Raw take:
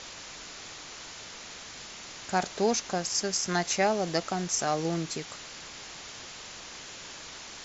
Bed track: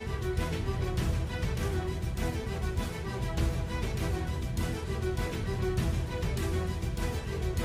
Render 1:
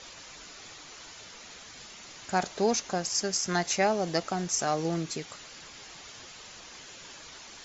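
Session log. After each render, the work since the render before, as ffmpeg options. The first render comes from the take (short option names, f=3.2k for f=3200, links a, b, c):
-af "afftdn=nr=7:nf=-45"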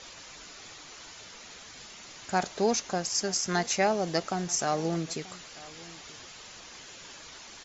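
-filter_complex "[0:a]asplit=2[a][b];[b]adelay=932.9,volume=-20dB,highshelf=f=4k:g=-21[c];[a][c]amix=inputs=2:normalize=0"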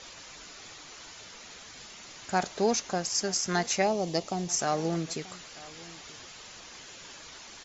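-filter_complex "[0:a]asettb=1/sr,asplit=3[a][b][c];[a]atrim=end=3.824[d];[b]atrim=start=3.82:end=4.5,asetpts=PTS-STARTPTS,afade=t=in:d=0.004:c=qsin,afade=t=out:st=0.676:d=0.004:c=qsin,equalizer=f=1.5k:t=o:w=0.63:g=-13[e];[c]atrim=start=4.496[f];[d][e]acrossfade=d=0.004:c1=hsin:c2=qsin[g];[g][f]acrossfade=d=0.004:c1=qsin:c2=hsin"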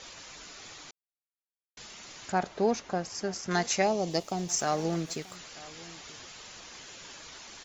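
-filter_complex "[0:a]asettb=1/sr,asplit=3[a][b][c];[a]atrim=end=2.324[d];[b]atrim=start=2.32:end=3.51,asetpts=PTS-STARTPTS,afade=t=in:d=0.004:c=qsin,afade=t=out:st=1.186:d=0.004:c=qsin,lowpass=f=1.8k:p=1[e];[c]atrim=start=3.506[f];[d][e]acrossfade=d=0.004:c1=hsin:c2=qsin[g];[g][f]acrossfade=d=0.004:c1=qsin:c2=hsin,asettb=1/sr,asplit=3[h][i][j];[h]atrim=end=4.104[k];[i]atrim=start=4.1:end=5.36,asetpts=PTS-STARTPTS,afade=t=in:d=0.004:c=qsin,afade=t=out:st=1.256:d=0.004:c=qsin,aeval=exprs='sgn(val(0))*max(abs(val(0))-0.00224,0)':c=same[l];[j]atrim=start=5.356[m];[k][l]acrossfade=d=0.004:c1=hsin:c2=qsin[n];[n][m]acrossfade=d=0.004:c1=qsin:c2=hsin,asplit=3[o][p][q];[o]atrim=end=0.91,asetpts=PTS-STARTPTS,afade=t=out:st=0.906:d=0.004:c=hsin[r];[p]atrim=start=0.91:end=1.77,asetpts=PTS-STARTPTS,volume=0[s];[q]atrim=start=1.77,asetpts=PTS-STARTPTS,afade=t=in:d=0.004:c=hsin[t];[r][s][t]concat=n=3:v=0:a=1"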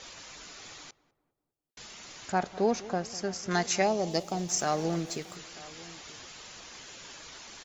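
-filter_complex "[0:a]asplit=2[a][b];[b]adelay=201,lowpass=f=940:p=1,volume=-17dB,asplit=2[c][d];[d]adelay=201,lowpass=f=940:p=1,volume=0.51,asplit=2[e][f];[f]adelay=201,lowpass=f=940:p=1,volume=0.51,asplit=2[g][h];[h]adelay=201,lowpass=f=940:p=1,volume=0.51[i];[a][c][e][g][i]amix=inputs=5:normalize=0"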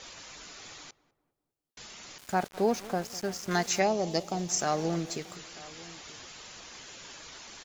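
-filter_complex "[0:a]asettb=1/sr,asplit=3[a][b][c];[a]atrim=end=2.184[d];[b]atrim=start=2.18:end=3.8,asetpts=PTS-STARTPTS,afade=t=in:d=0.004:c=qsin,afade=t=out:st=1.616:d=0.004:c=qsin,aeval=exprs='val(0)*gte(abs(val(0)),0.00944)':c=same[e];[c]atrim=start=3.796[f];[d][e]acrossfade=d=0.004:c1=hsin:c2=qsin[g];[g][f]acrossfade=d=0.004:c1=qsin:c2=hsin"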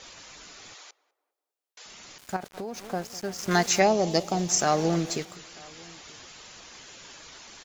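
-filter_complex "[0:a]asettb=1/sr,asplit=3[a][b][c];[a]atrim=end=0.744[d];[b]atrim=start=0.74:end=1.86,asetpts=PTS-STARTPTS,afade=t=in:d=0.004:c=qsin,afade=t=out:st=1.116:d=0.004:c=qsin,highpass=f=440:w=0.5412,highpass=f=440:w=1.3066[e];[c]atrim=start=1.856[f];[d][e]acrossfade=d=0.004:c1=hsin:c2=qsin[g];[g][f]acrossfade=d=0.004:c1=qsin:c2=hsin,asettb=1/sr,asplit=3[h][i][j];[h]atrim=end=2.364[k];[i]atrim=start=2.36:end=2.8,asetpts=PTS-STARTPTS,afade=t=in:d=0.004:c=qsin,afade=t=out:st=0.436:d=0.004:c=qsin,acompressor=threshold=-31dB:ratio=6:attack=3.2:release=140:knee=1:detection=peak[l];[j]atrim=start=2.796[m];[k][l]acrossfade=d=0.004:c1=hsin:c2=qsin[n];[n][m]acrossfade=d=0.004:c1=qsin:c2=hsin,asettb=1/sr,asplit=3[o][p][q];[o]atrim=end=3.384[r];[p]atrim=start=3.38:end=5.25,asetpts=PTS-STARTPTS,afade=t=in:d=0.004:c=qsin,afade=t=out:st=1.866:d=0.004:c=qsin,acontrast=37[s];[q]atrim=start=5.246[t];[r][s]acrossfade=d=0.004:c1=hsin:c2=qsin[u];[u][t]acrossfade=d=0.004:c1=qsin:c2=hsin"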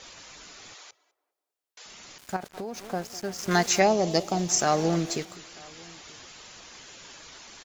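-filter_complex "[0:a]asplit=2[a][b];[b]adelay=204.1,volume=-24dB,highshelf=f=4k:g=-4.59[c];[a][c]amix=inputs=2:normalize=0"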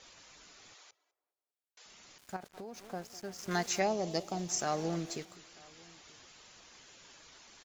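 -af "volume=-10dB"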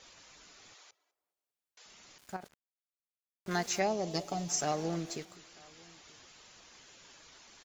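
-filter_complex "[0:a]asettb=1/sr,asplit=3[a][b][c];[a]atrim=end=4.134[d];[b]atrim=start=4.13:end=4.72,asetpts=PTS-STARTPTS,afade=t=in:d=0.004:c=qsin,afade=t=out:st=0.586:d=0.004:c=qsin,aecho=1:1:7:0.65,atrim=end_sample=26019[e];[c]atrim=start=4.716[f];[d][e]acrossfade=d=0.004:c1=hsin:c2=qsin[g];[g][f]acrossfade=d=0.004:c1=qsin:c2=hsin,asplit=3[h][i][j];[h]atrim=end=2.54,asetpts=PTS-STARTPTS,afade=t=out:st=2.536:d=0.004:c=hsin[k];[i]atrim=start=2.54:end=3.46,asetpts=PTS-STARTPTS,volume=0[l];[j]atrim=start=3.46,asetpts=PTS-STARTPTS,afade=t=in:d=0.004:c=hsin[m];[k][l][m]concat=n=3:v=0:a=1"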